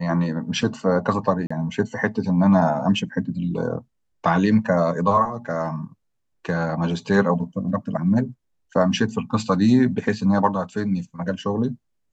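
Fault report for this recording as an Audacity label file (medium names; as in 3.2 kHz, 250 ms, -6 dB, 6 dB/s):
1.470000	1.500000	dropout 35 ms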